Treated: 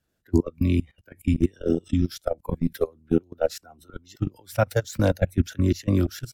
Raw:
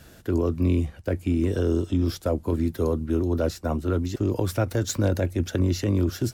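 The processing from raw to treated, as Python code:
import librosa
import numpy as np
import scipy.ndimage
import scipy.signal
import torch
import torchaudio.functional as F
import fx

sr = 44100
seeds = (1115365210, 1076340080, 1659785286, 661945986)

y = fx.level_steps(x, sr, step_db=22)
y = fx.noise_reduce_blind(y, sr, reduce_db=15)
y = fx.hpss(y, sr, part='harmonic', gain_db=-6)
y = F.gain(torch.from_numpy(y), 7.5).numpy()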